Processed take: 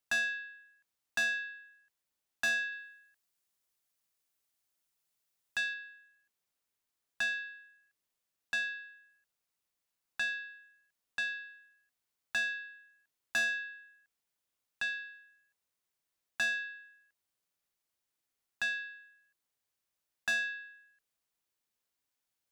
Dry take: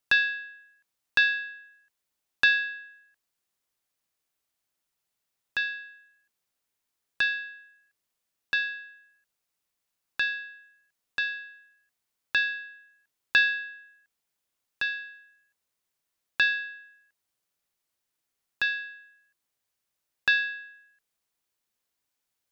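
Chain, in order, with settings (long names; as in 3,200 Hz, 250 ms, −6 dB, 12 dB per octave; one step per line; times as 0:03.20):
soft clipping −22.5 dBFS, distortion −9 dB
0:02.72–0:05.74: high-shelf EQ 4,300 Hz +5.5 dB
level −4 dB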